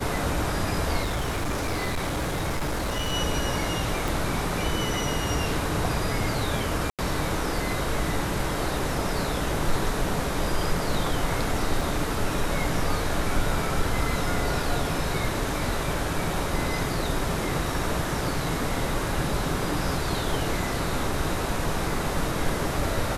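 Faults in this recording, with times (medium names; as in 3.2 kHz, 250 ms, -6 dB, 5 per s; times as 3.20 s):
1.02–3.14 s: clipped -23.5 dBFS
4.08 s: pop
6.90–6.99 s: dropout 87 ms
11.81 s: dropout 2.9 ms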